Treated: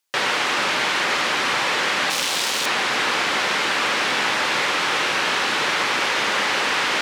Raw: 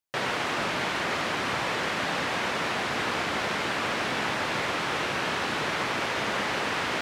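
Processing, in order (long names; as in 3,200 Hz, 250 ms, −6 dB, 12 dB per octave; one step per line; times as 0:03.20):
0:02.10–0:02.66: phase distortion by the signal itself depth 0.37 ms
high-pass filter 420 Hz 6 dB per octave
parametric band 5,100 Hz +4 dB 2.7 octaves
notch filter 670 Hz, Q 12
in parallel at +0.5 dB: brickwall limiter −30.5 dBFS, peak gain reduction 16.5 dB
on the sum: level +4.5 dB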